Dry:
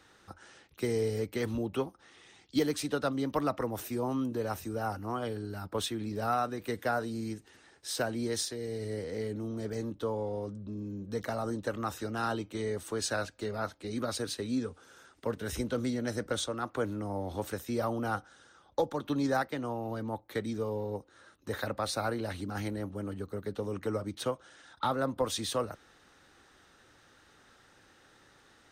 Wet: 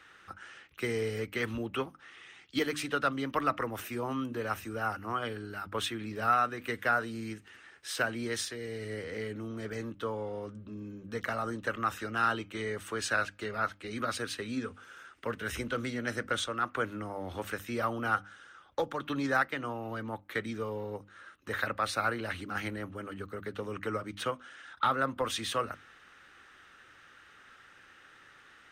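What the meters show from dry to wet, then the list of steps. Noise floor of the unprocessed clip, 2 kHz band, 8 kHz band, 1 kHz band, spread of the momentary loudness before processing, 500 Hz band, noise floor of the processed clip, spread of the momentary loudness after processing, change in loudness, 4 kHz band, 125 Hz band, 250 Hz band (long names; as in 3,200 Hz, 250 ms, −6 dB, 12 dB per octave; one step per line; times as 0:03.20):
−62 dBFS, +7.5 dB, −2.5 dB, +3.0 dB, 7 LU, −2.5 dB, −58 dBFS, 13 LU, +0.5 dB, +1.0 dB, −3.5 dB, −3.0 dB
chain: flat-topped bell 1,900 Hz +10 dB
mains-hum notches 50/100/150/200/250/300 Hz
level −2.5 dB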